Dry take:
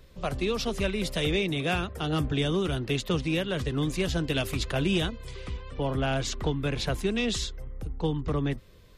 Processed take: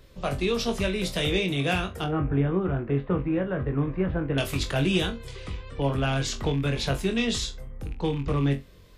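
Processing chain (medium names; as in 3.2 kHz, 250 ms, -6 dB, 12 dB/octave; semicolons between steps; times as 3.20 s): rattle on loud lows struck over -28 dBFS, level -35 dBFS; 2.04–4.38 s: low-pass 1.7 kHz 24 dB/octave; flutter echo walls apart 3.7 m, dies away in 0.2 s; trim +1 dB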